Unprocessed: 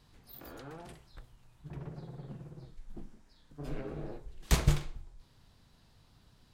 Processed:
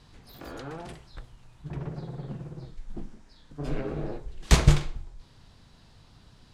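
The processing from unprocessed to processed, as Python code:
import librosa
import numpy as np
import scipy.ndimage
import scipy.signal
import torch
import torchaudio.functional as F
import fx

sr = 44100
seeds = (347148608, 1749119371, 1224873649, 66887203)

y = scipy.signal.sosfilt(scipy.signal.butter(2, 8800.0, 'lowpass', fs=sr, output='sos'), x)
y = F.gain(torch.from_numpy(y), 8.0).numpy()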